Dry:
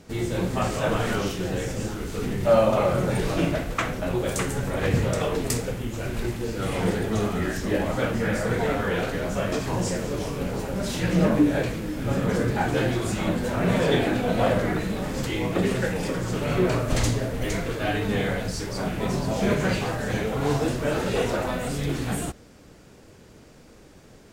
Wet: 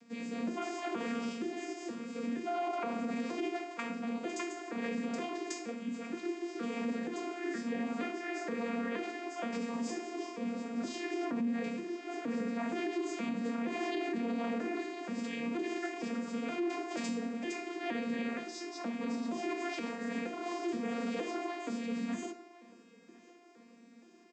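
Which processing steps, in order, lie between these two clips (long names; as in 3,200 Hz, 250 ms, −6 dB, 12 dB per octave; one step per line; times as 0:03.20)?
vocoder with an arpeggio as carrier bare fifth, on A#3, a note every 471 ms
convolution reverb RT60 0.45 s, pre-delay 3 ms, DRR 7 dB
brickwall limiter −20.5 dBFS, peak gain reduction 10 dB
high-shelf EQ 6,000 Hz +8.5 dB
repeating echo 1,050 ms, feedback 39%, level −22.5 dB
level −7 dB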